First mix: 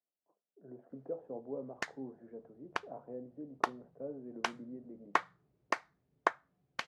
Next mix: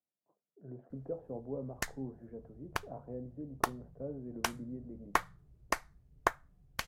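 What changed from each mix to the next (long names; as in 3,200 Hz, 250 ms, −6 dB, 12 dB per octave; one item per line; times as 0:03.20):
master: remove band-pass filter 250–4,300 Hz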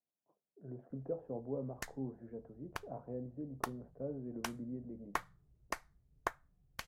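background −7.5 dB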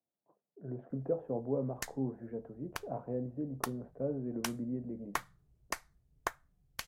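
speech +6.0 dB
master: add high-shelf EQ 2,800 Hz +8 dB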